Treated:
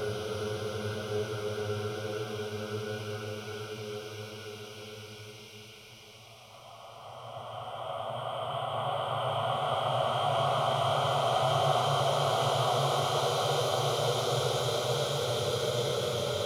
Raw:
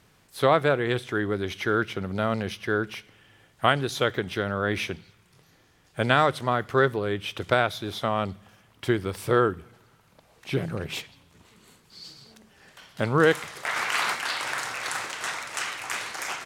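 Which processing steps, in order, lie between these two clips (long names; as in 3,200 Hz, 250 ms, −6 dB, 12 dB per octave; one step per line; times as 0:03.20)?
extreme stretch with random phases 11×, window 1.00 s, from 0:02.65
phaser with its sweep stopped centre 710 Hz, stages 4
echo through a band-pass that steps 124 ms, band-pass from 3,600 Hz, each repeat 0.7 octaves, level −4.5 dB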